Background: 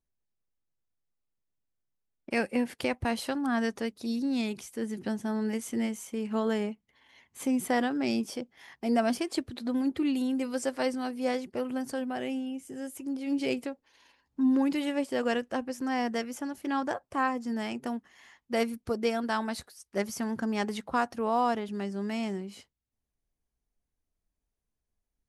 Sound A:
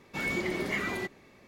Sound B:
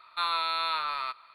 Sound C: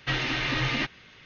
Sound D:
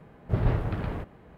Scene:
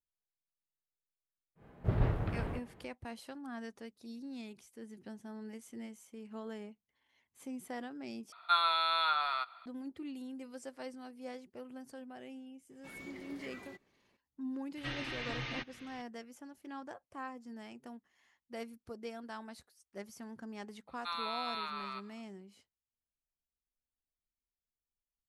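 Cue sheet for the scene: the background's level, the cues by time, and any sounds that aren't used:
background -15.5 dB
1.55 s: add D -5.5 dB, fades 0.10 s
8.32 s: replace with B -5 dB + small resonant body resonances 730/1400/3400 Hz, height 15 dB
12.70 s: add A -18 dB
14.77 s: add C -13 dB + upward compressor, threshold -32 dBFS
20.88 s: add B -10 dB

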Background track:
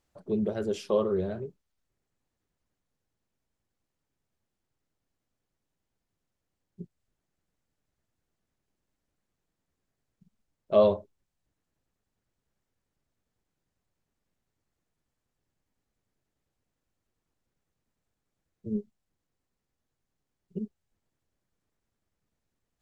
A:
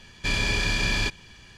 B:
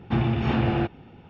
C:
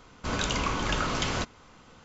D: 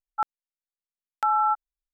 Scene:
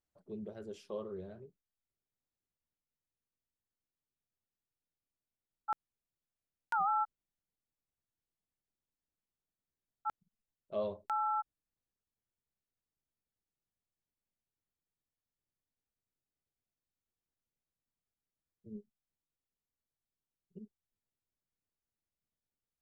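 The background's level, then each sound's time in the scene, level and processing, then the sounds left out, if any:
background track -15.5 dB
5.50 s: add D -9.5 dB + warped record 78 rpm, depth 160 cents
9.87 s: add D -11.5 dB
not used: A, B, C

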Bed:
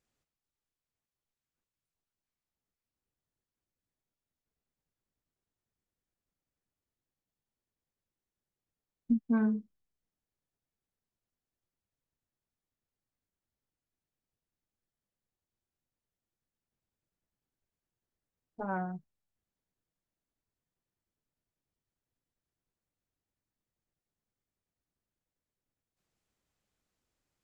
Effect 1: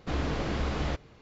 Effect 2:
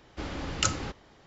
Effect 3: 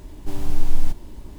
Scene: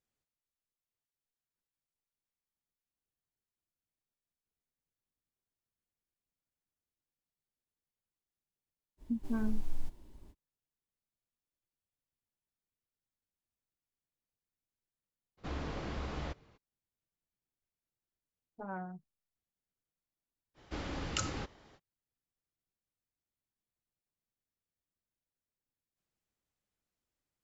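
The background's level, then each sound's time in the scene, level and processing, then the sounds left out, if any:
bed -7 dB
8.97 s: add 3 -17.5 dB, fades 0.05 s
15.37 s: add 1 -9.5 dB, fades 0.02 s + peaking EQ 1 kHz +2 dB 0.84 oct
20.54 s: add 2 -4 dB, fades 0.05 s + peak limiter -15 dBFS

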